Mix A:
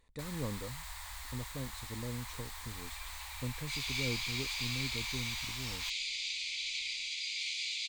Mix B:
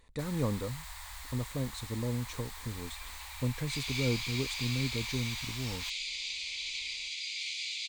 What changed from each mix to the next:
speech +7.0 dB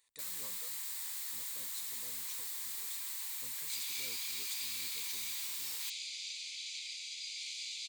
first sound +6.0 dB
master: add first difference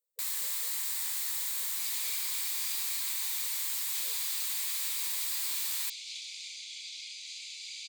speech: add flat-topped band-pass 510 Hz, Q 4.7
first sound +7.5 dB
second sound: entry −1.90 s

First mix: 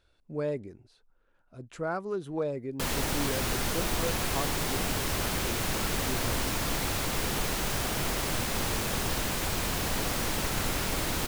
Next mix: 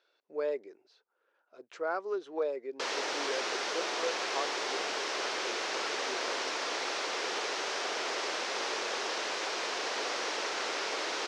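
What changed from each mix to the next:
master: add elliptic band-pass filter 400–5,800 Hz, stop band 70 dB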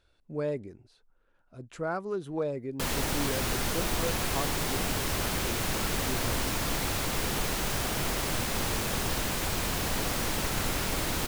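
master: remove elliptic band-pass filter 400–5,800 Hz, stop band 70 dB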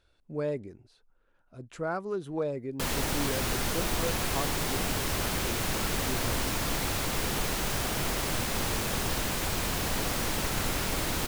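nothing changed

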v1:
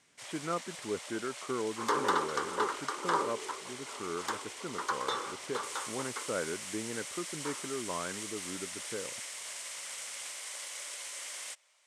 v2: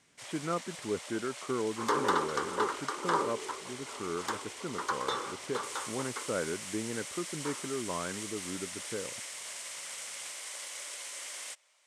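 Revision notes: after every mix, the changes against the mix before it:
master: add low-shelf EQ 310 Hz +5 dB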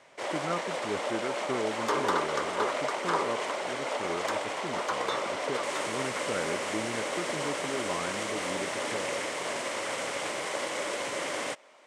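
first sound: remove first difference

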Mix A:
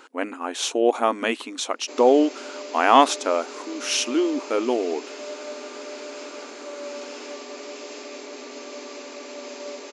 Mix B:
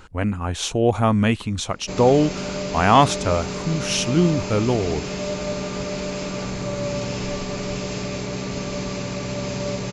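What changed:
background +7.0 dB
master: remove linear-phase brick-wall high-pass 240 Hz

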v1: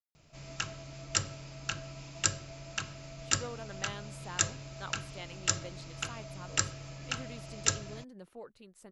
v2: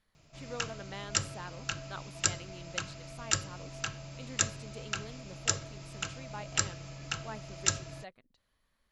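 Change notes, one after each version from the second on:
speech: entry −2.90 s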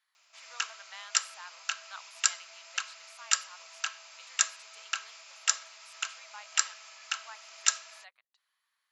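background +3.0 dB
master: add high-pass filter 970 Hz 24 dB per octave

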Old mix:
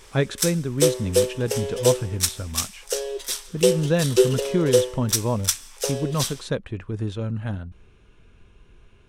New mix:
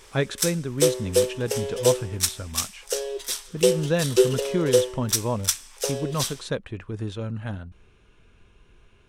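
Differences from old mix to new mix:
speech: add low-shelf EQ 420 Hz −4 dB
reverb: off

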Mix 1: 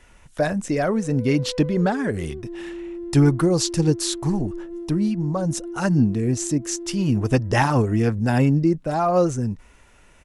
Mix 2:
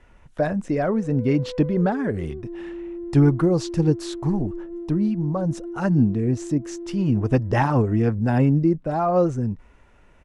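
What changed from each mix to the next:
master: add low-pass filter 1,400 Hz 6 dB per octave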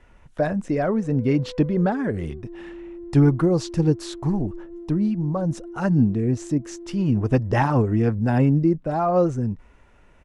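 background −4.5 dB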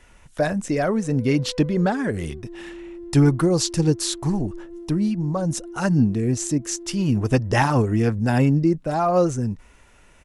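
master: remove low-pass filter 1,400 Hz 6 dB per octave

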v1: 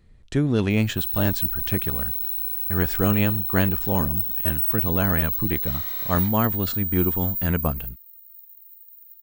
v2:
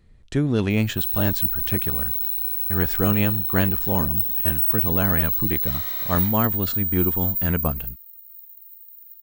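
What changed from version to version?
background: send +7.0 dB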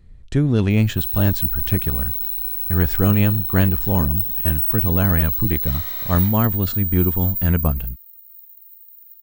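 master: add low-shelf EQ 150 Hz +10 dB

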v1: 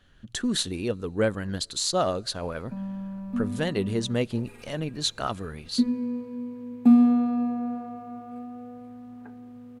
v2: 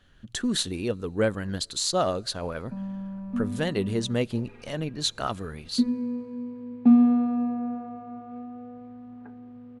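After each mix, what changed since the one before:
background: add high-frequency loss of the air 240 metres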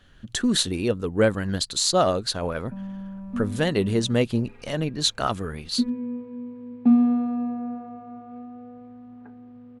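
speech +5.0 dB
reverb: off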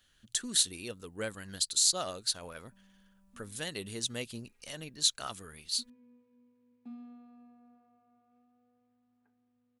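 background −10.5 dB
master: add first-order pre-emphasis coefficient 0.9

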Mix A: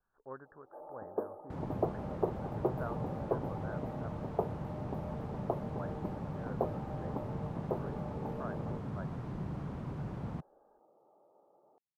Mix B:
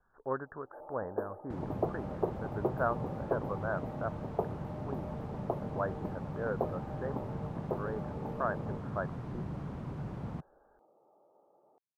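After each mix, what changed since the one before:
speech +11.5 dB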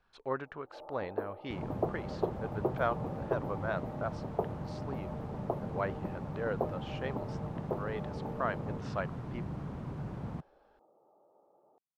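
speech: remove Butterworth low-pass 1,700 Hz 96 dB per octave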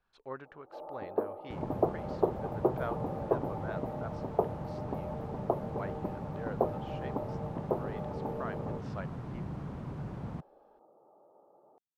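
speech −7.0 dB
first sound +4.5 dB

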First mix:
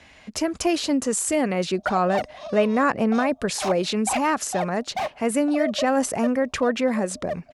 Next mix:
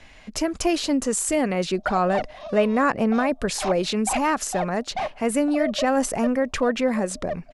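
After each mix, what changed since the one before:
background: add high-frequency loss of the air 110 metres
master: remove high-pass filter 68 Hz 12 dB per octave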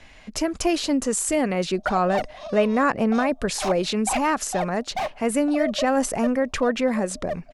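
background: remove high-frequency loss of the air 110 metres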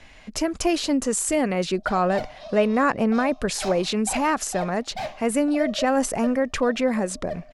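background −3.5 dB
reverb: on, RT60 0.70 s

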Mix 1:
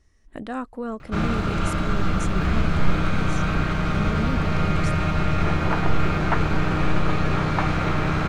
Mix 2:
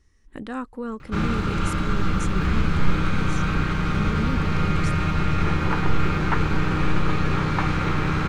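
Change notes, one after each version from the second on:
master: add parametric band 660 Hz −14.5 dB 0.23 octaves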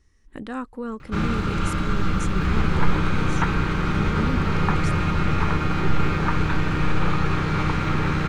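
second sound: entry −2.90 s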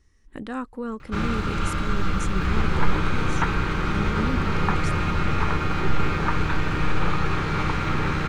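first sound: add parametric band 190 Hz −4.5 dB 2 octaves

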